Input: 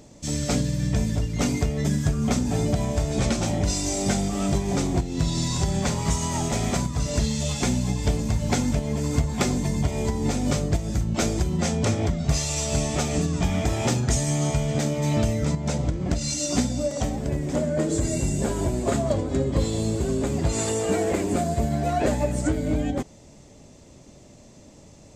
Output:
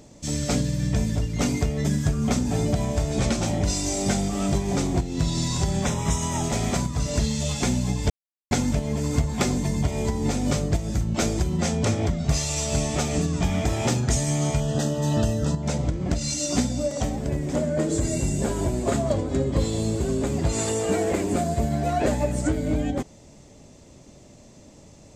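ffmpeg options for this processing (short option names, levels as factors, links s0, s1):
-filter_complex "[0:a]asettb=1/sr,asplit=3[s0][s1][s2];[s0]atrim=end=5.854[s3];[s1]atrim=start=5.85:end=6.44,asetpts=PTS-STARTPTS,afade=t=in:d=0.004:c=qsin,afade=t=out:st=0.586:d=0.004:c=qsin,asuperstop=centerf=4500:order=8:qfactor=6.1[s4];[s2]atrim=start=6.436[s5];[s3][s4]acrossfade=d=0.004:c1=hsin:c2=qsin[s6];[s6][s5]acrossfade=d=0.004:c1=qsin:c2=hsin,asettb=1/sr,asplit=3[s7][s8][s9];[s7]atrim=end=14.604[s10];[s8]atrim=start=14.6:end=15.63,asetpts=PTS-STARTPTS,afade=t=in:d=0.004:c=qsin,afade=t=out:st=1.026:d=0.004:c=qsin,asuperstop=centerf=2200:order=20:qfactor=4.2[s11];[s9]atrim=start=15.626[s12];[s10][s11]acrossfade=d=0.004:c1=hsin:c2=qsin[s13];[s13][s12]acrossfade=d=0.004:c1=qsin:c2=hsin,asplit=3[s14][s15][s16];[s14]atrim=end=8.1,asetpts=PTS-STARTPTS,afade=t=out:st=8.096:d=0.004:c=hsin[s17];[s15]atrim=start=8.1:end=8.51,asetpts=PTS-STARTPTS,volume=0[s18];[s16]atrim=start=8.51,asetpts=PTS-STARTPTS,afade=t=in:d=0.004:c=hsin[s19];[s17][s18][s19]concat=n=3:v=0:a=1"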